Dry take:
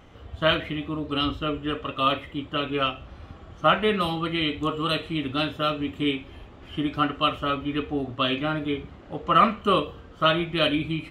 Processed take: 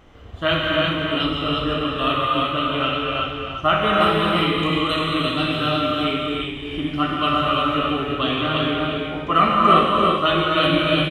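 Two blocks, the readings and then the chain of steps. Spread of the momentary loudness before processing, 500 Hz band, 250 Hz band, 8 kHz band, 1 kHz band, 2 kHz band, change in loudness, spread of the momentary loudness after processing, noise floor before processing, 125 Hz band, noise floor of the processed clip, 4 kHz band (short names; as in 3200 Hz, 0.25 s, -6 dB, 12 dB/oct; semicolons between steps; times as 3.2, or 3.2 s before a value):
11 LU, +5.5 dB, +5.0 dB, n/a, +6.5 dB, +6.5 dB, +5.5 dB, 7 LU, -47 dBFS, +6.0 dB, -31 dBFS, +6.0 dB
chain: on a send: echo 0.346 s -4.5 dB; on the sum: non-linear reverb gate 0.42 s flat, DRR -3 dB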